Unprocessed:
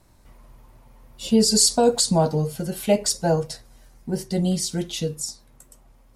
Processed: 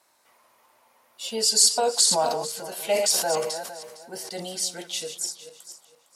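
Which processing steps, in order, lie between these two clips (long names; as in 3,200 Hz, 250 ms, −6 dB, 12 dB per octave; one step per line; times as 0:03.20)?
feedback delay that plays each chunk backwards 229 ms, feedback 46%, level −10 dB
high-pass filter 700 Hz 12 dB per octave
0:01.95–0:04.47: level that may fall only so fast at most 41 dB per second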